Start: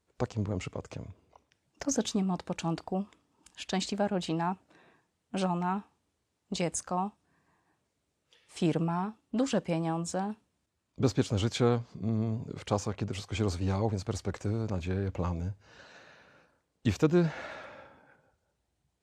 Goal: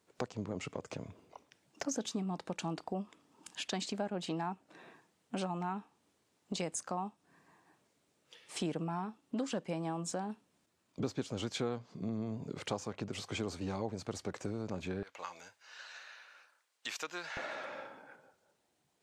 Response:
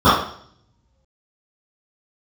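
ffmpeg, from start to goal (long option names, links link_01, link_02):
-af "asetnsamples=nb_out_samples=441:pad=0,asendcmd='15.03 highpass f 1300;17.37 highpass f 240',highpass=160,acompressor=threshold=-45dB:ratio=2.5,volume=5.5dB"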